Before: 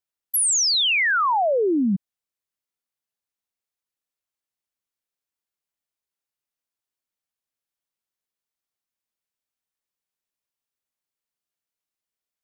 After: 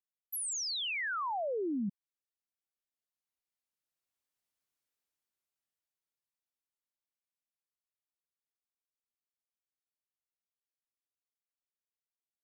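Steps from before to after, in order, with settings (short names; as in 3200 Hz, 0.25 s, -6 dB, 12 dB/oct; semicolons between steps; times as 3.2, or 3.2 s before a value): Doppler pass-by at 4.64, 12 m/s, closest 7.7 m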